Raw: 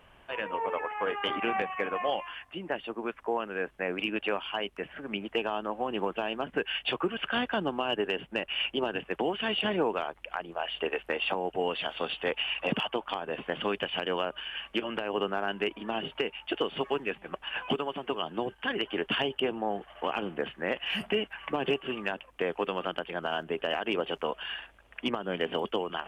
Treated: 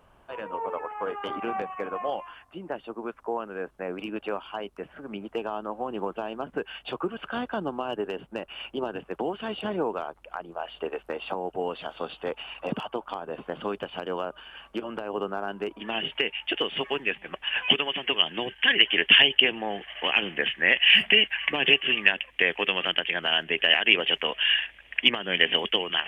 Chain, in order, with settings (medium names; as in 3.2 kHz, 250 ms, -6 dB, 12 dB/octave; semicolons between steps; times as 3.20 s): high-order bell 2.4 kHz -8.5 dB 1.2 oct, from 15.79 s +8.5 dB, from 17.62 s +16 dB